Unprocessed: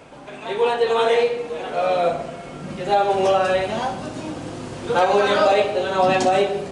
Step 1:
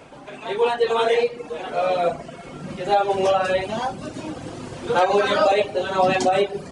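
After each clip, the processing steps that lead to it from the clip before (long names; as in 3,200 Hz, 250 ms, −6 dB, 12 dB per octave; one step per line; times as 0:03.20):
reverb reduction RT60 0.64 s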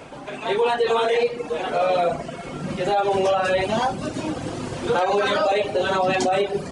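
brickwall limiter −17 dBFS, peak gain reduction 9 dB
level +4.5 dB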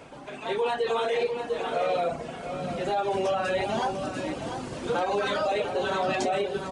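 single-tap delay 696 ms −8.5 dB
level −6.5 dB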